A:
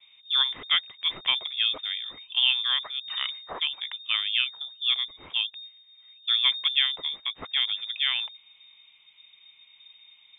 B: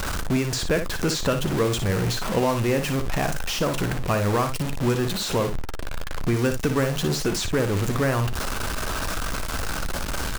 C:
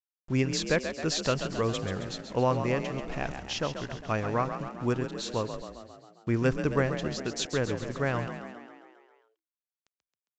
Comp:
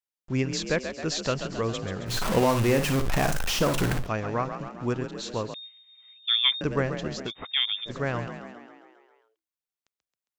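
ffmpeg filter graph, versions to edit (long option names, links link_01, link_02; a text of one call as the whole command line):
ffmpeg -i take0.wav -i take1.wav -i take2.wav -filter_complex "[0:a]asplit=2[link_01][link_02];[2:a]asplit=4[link_03][link_04][link_05][link_06];[link_03]atrim=end=2.16[link_07];[1:a]atrim=start=2.06:end=4.09[link_08];[link_04]atrim=start=3.99:end=5.542[link_09];[link_01]atrim=start=5.538:end=6.612[link_10];[link_05]atrim=start=6.608:end=7.32[link_11];[link_02]atrim=start=7.26:end=7.91[link_12];[link_06]atrim=start=7.85[link_13];[link_07][link_08]acrossfade=duration=0.1:curve1=tri:curve2=tri[link_14];[link_14][link_09]acrossfade=duration=0.1:curve1=tri:curve2=tri[link_15];[link_15][link_10]acrossfade=duration=0.004:curve1=hsin:curve2=hsin[link_16];[link_16][link_11]acrossfade=duration=0.004:curve1=hsin:curve2=hsin[link_17];[link_17][link_12]acrossfade=duration=0.06:curve1=tri:curve2=tri[link_18];[link_18][link_13]acrossfade=duration=0.06:curve1=tri:curve2=tri" out.wav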